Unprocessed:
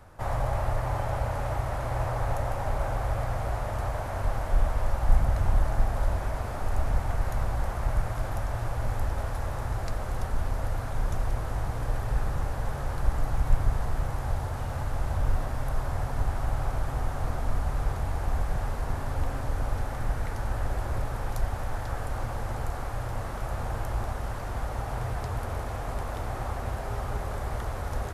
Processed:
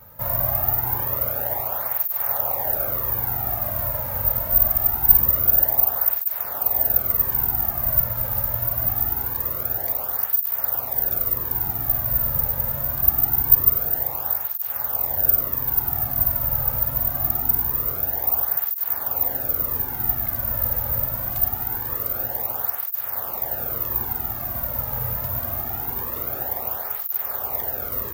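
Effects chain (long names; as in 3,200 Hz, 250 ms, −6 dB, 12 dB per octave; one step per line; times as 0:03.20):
bad sample-rate conversion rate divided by 3×, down none, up zero stuff
through-zero flanger with one copy inverted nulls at 0.24 Hz, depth 2.9 ms
level +3.5 dB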